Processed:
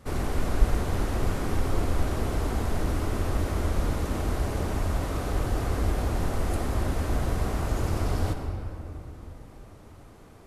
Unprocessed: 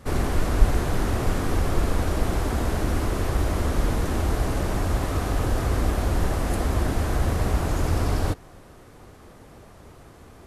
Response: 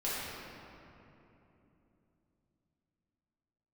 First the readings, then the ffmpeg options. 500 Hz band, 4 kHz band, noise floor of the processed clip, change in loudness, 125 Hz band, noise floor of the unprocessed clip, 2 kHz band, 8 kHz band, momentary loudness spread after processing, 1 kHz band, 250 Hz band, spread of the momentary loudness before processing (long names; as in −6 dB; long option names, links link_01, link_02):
−3.5 dB, −4.5 dB, −49 dBFS, −3.5 dB, −3.5 dB, −48 dBFS, −4.5 dB, −4.5 dB, 8 LU, −4.0 dB, −3.5 dB, 2 LU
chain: -filter_complex "[0:a]bandreject=frequency=1700:width=28,asplit=2[link_01][link_02];[1:a]atrim=start_sample=2205,adelay=89[link_03];[link_02][link_03]afir=irnorm=-1:irlink=0,volume=-12.5dB[link_04];[link_01][link_04]amix=inputs=2:normalize=0,volume=-5dB"